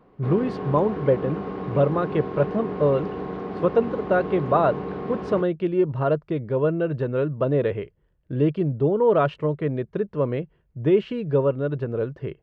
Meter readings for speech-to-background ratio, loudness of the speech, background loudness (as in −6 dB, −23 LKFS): 7.5 dB, −24.0 LKFS, −31.5 LKFS